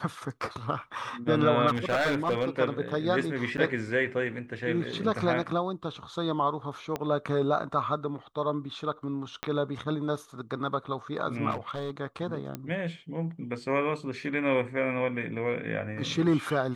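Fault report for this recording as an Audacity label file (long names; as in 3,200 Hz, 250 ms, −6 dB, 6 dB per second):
1.670000	2.490000	clipping −22 dBFS
3.570000	3.580000	drop-out 9.4 ms
6.960000	6.960000	click −17 dBFS
9.430000	9.430000	click −16 dBFS
11.500000	11.910000	clipping −28 dBFS
12.550000	12.550000	click −20 dBFS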